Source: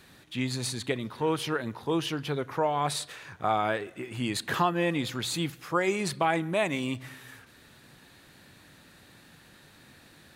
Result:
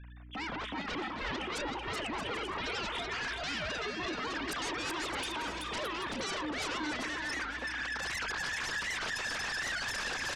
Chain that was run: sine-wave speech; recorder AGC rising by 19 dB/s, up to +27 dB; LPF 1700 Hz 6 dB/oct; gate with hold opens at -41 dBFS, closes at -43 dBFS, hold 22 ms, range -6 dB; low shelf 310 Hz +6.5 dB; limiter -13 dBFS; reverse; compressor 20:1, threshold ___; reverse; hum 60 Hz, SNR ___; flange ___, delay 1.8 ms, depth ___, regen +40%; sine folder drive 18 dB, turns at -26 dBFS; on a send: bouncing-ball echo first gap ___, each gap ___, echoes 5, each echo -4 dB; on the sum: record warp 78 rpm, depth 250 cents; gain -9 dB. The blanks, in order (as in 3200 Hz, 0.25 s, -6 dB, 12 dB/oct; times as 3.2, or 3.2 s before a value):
-31 dBFS, 22 dB, 0.62 Hz, 3.5 ms, 0.38 s, 0.65×